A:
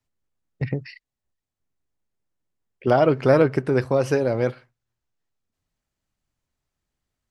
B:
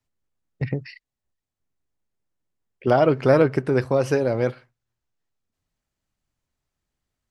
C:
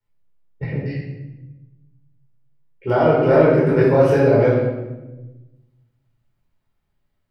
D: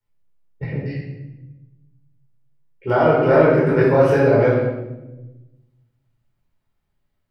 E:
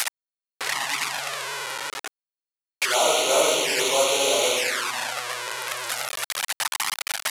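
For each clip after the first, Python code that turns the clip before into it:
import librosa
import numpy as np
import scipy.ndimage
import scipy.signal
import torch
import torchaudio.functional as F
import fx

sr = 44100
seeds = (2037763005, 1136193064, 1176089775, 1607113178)

y1 = x
y2 = fx.peak_eq(y1, sr, hz=6800.0, db=-10.0, octaves=1.3)
y2 = fx.rider(y2, sr, range_db=10, speed_s=0.5)
y2 = fx.room_shoebox(y2, sr, seeds[0], volume_m3=540.0, walls='mixed', distance_m=4.5)
y2 = y2 * librosa.db_to_amplitude(-4.5)
y3 = fx.dynamic_eq(y2, sr, hz=1400.0, q=0.86, threshold_db=-33.0, ratio=4.0, max_db=4)
y3 = y3 * librosa.db_to_amplitude(-1.0)
y4 = fx.delta_mod(y3, sr, bps=64000, step_db=-15.5)
y4 = scipy.signal.sosfilt(scipy.signal.butter(2, 1100.0, 'highpass', fs=sr, output='sos'), y4)
y4 = fx.env_flanger(y4, sr, rest_ms=5.6, full_db=-20.5)
y4 = y4 * librosa.db_to_amplitude(6.0)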